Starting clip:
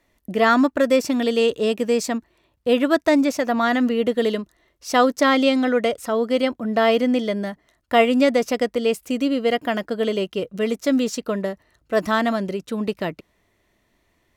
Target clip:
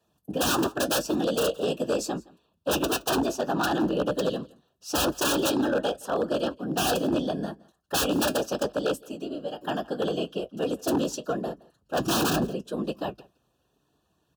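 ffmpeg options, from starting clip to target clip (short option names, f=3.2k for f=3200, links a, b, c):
-filter_complex "[0:a]asplit=3[a][b][c];[a]afade=t=out:st=8.97:d=0.02[d];[b]acompressor=threshold=-31dB:ratio=2.5,afade=t=in:st=8.97:d=0.02,afade=t=out:st=9.6:d=0.02[e];[c]afade=t=in:st=9.6:d=0.02[f];[d][e][f]amix=inputs=3:normalize=0,asettb=1/sr,asplit=3[g][h][i];[g]atrim=end=11.994[j];[h]atrim=start=11.99:end=12.45,asetpts=PTS-STARTPTS,afade=t=in:d=0.004:c=qsin,afade=t=out:st=0.456:d=0.004:c=qsin,lowshelf=f=330:g=11.5[k];[i]atrim=start=12.446[l];[j][k]acrossfade=d=0.004:c1=hsin:c2=qsin[m];[m][l]acrossfade=d=0.004:c1=qsin:c2=hsin,aeval=exprs='(mod(2.99*val(0)+1,2)-1)/2.99':c=same,afftfilt=real='hypot(re,im)*cos(2*PI*random(0))':imag='hypot(re,im)*sin(2*PI*random(1))':win_size=512:overlap=0.75,flanger=delay=6.6:depth=3:regen=-59:speed=0.78:shape=triangular,aeval=exprs='0.0668*(abs(mod(val(0)/0.0668+3,4)-2)-1)':c=same,afreqshift=44,asuperstop=centerf=2100:order=8:qfactor=2.7,aecho=1:1:168:0.0631,volume=5dB"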